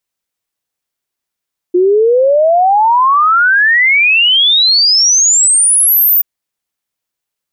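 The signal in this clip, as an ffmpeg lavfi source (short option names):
-f lavfi -i "aevalsrc='0.501*clip(min(t,4.48-t)/0.01,0,1)*sin(2*PI*350*4.48/log(15000/350)*(exp(log(15000/350)*t/4.48)-1))':d=4.48:s=44100"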